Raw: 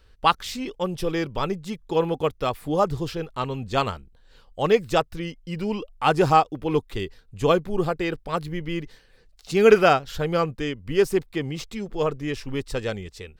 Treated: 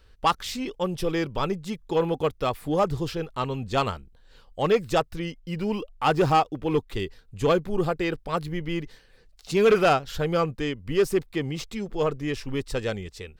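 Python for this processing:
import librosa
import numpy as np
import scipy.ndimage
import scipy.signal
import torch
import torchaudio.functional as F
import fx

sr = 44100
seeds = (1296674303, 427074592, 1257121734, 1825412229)

y = fx.median_filter(x, sr, points=5, at=(5.39, 6.9))
y = 10.0 ** (-12.5 / 20.0) * np.tanh(y / 10.0 ** (-12.5 / 20.0))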